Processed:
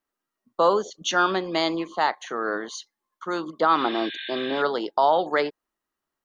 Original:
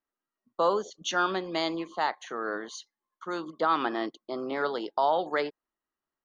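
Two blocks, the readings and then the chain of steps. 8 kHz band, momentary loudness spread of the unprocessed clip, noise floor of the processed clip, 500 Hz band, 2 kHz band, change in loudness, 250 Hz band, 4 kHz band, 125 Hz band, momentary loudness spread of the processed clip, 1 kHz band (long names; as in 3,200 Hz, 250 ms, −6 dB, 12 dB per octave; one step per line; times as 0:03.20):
can't be measured, 10 LU, below −85 dBFS, +5.5 dB, +5.5 dB, +5.5 dB, +5.5 dB, +6.5 dB, +5.5 dB, 10 LU, +5.5 dB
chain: healed spectral selection 0:03.80–0:04.59, 1,500–4,300 Hz before
level +5.5 dB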